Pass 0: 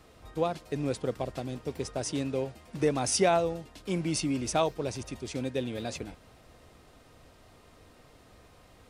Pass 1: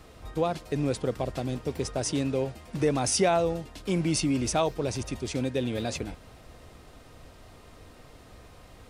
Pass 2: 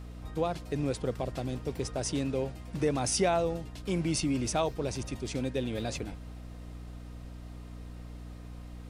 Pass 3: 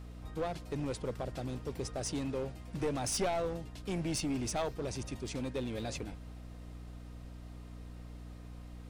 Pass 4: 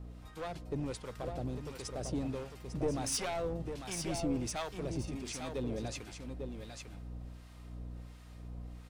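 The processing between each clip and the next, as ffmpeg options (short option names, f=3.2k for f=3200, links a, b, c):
-filter_complex "[0:a]lowshelf=f=78:g=5.5,asplit=2[a][b];[b]alimiter=limit=-24dB:level=0:latency=1:release=55,volume=2dB[c];[a][c]amix=inputs=2:normalize=0,volume=-2.5dB"
-af "aeval=exprs='val(0)+0.0112*(sin(2*PI*60*n/s)+sin(2*PI*2*60*n/s)/2+sin(2*PI*3*60*n/s)/3+sin(2*PI*4*60*n/s)/4+sin(2*PI*5*60*n/s)/5)':c=same,volume=-3.5dB"
-af "aeval=exprs='clip(val(0),-1,0.0398)':c=same,volume=-3.5dB"
-filter_complex "[0:a]aecho=1:1:849:0.473,acrossover=split=900[a][b];[a]aeval=exprs='val(0)*(1-0.7/2+0.7/2*cos(2*PI*1.4*n/s))':c=same[c];[b]aeval=exprs='val(0)*(1-0.7/2-0.7/2*cos(2*PI*1.4*n/s))':c=same[d];[c][d]amix=inputs=2:normalize=0,volume=1dB"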